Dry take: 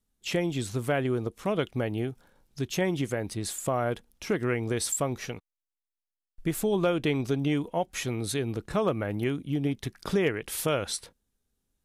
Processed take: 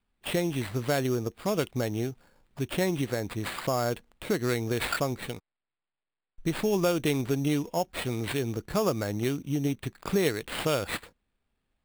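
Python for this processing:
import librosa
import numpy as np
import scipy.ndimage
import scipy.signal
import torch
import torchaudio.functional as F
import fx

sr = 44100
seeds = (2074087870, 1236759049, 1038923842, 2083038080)

y = fx.sample_hold(x, sr, seeds[0], rate_hz=6000.0, jitter_pct=0)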